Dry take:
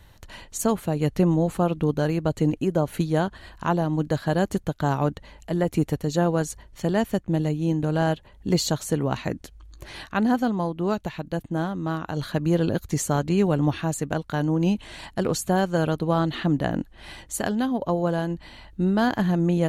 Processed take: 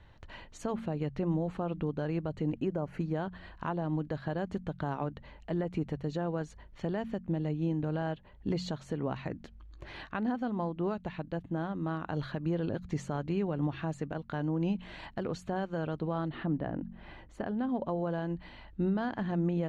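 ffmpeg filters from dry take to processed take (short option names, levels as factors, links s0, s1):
-filter_complex "[0:a]asettb=1/sr,asplit=3[s0][s1][s2];[s0]atrim=end=2.734[s3];[s1]atrim=start=2.73:end=3.14,asetpts=PTS-STARTPTS,afade=t=in:d=0.004:c=qsin,afade=t=out:st=0.406:d=0.004:c=qsin,equalizer=f=3600:t=o:w=0.37:g=-14[s4];[s2]atrim=start=3.136[s5];[s3][s4]acrossfade=d=0.004:c1=hsin:c2=qsin[s6];[s6][s5]acrossfade=d=0.004:c1=qsin:c2=hsin,asettb=1/sr,asplit=3[s7][s8][s9];[s7]atrim=end=16.284[s10];[s8]atrim=start=16.28:end=17.69,asetpts=PTS-STARTPTS,afade=t=in:d=0.004:c=qsin,afade=t=out:st=1.406:d=0.004:c=qsin,equalizer=f=8400:t=o:w=2.9:g=-12.5[s11];[s9]atrim=start=17.686[s12];[s10][s11]acrossfade=d=0.004:c1=hsin:c2=qsin[s13];[s13][s12]acrossfade=d=0.004:c1=qsin:c2=hsin,lowpass=3000,bandreject=f=45.14:t=h:w=4,bandreject=f=90.28:t=h:w=4,bandreject=f=135.42:t=h:w=4,bandreject=f=180.56:t=h:w=4,bandreject=f=225.7:t=h:w=4,alimiter=limit=0.126:level=0:latency=1:release=189,volume=0.596"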